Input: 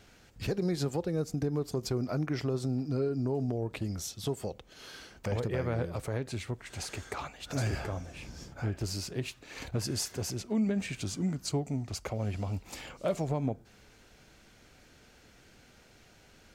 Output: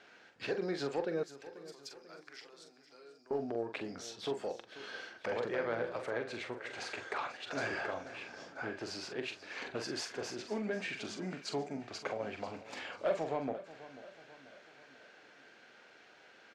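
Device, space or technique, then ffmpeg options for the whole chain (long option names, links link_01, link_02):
intercom: -filter_complex "[0:a]highpass=400,lowpass=3700,equalizer=frequency=1600:width_type=o:width=0.27:gain=5.5,asoftclip=type=tanh:threshold=-24dB,asplit=2[link_01][link_02];[link_02]adelay=43,volume=-7.5dB[link_03];[link_01][link_03]amix=inputs=2:normalize=0,asettb=1/sr,asplit=3[link_04][link_05][link_06];[link_04]atrim=end=1.234[link_07];[link_05]atrim=start=1.23:end=3.31,asetpts=PTS-STARTPTS,afade=type=in:duration=0.004:curve=qsin,afade=type=out:start_time=2.076:duration=0.004:curve=qsin,aderivative[link_08];[link_06]atrim=start=3.306[link_09];[link_07][link_08]acrossfade=duration=0.004:curve1=hsin:curve2=qsin[link_10];[link_10][link_09]acrossfade=duration=0.004:curve1=qsin:curve2=hsin,aecho=1:1:489|978|1467|1956:0.158|0.0792|0.0396|0.0198,volume=1dB"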